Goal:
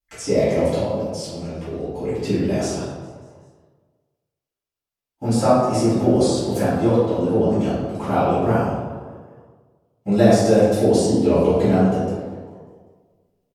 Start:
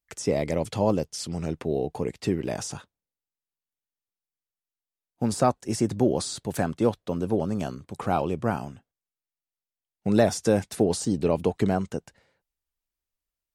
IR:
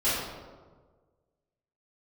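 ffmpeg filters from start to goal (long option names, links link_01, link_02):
-filter_complex "[0:a]asettb=1/sr,asplit=3[link_01][link_02][link_03];[link_01]atrim=end=0.694[link_04];[link_02]atrim=start=0.69:end=2.03,asetpts=PTS-STARTPTS,afade=type=in:duration=0.004:curve=qsin,afade=type=out:start_time=1.336:duration=0.004:curve=qsin,acompressor=threshold=-35dB:ratio=2.5[link_05];[link_03]atrim=start=2.026[link_06];[link_04][link_05]acrossfade=duration=0.004:curve1=hsin:curve2=qsin[link_07];[link_07][link_06]acrossfade=duration=0.004:curve1=qsin:curve2=hsin,asettb=1/sr,asplit=3[link_08][link_09][link_10];[link_08]atrim=end=6.574[link_11];[link_09]atrim=start=6.57:end=7.74,asetpts=PTS-STARTPTS,afade=type=in:duration=0.004:curve=qsin,afade=type=out:start_time=1.166:duration=0.004:curve=qsin,lowpass=11000[link_12];[link_10]atrim=start=7.736[link_13];[link_11][link_12]acrossfade=duration=0.004:curve1=hsin:curve2=qsin[link_14];[link_14][link_13]acrossfade=duration=0.004:curve1=qsin:curve2=hsin,asplit=5[link_15][link_16][link_17][link_18][link_19];[link_16]adelay=197,afreqshift=67,volume=-22dB[link_20];[link_17]adelay=394,afreqshift=134,volume=-26.6dB[link_21];[link_18]adelay=591,afreqshift=201,volume=-31.2dB[link_22];[link_19]adelay=788,afreqshift=268,volume=-35.7dB[link_23];[link_15][link_20][link_21][link_22][link_23]amix=inputs=5:normalize=0[link_24];[1:a]atrim=start_sample=2205[link_25];[link_24][link_25]afir=irnorm=-1:irlink=0,volume=-6dB"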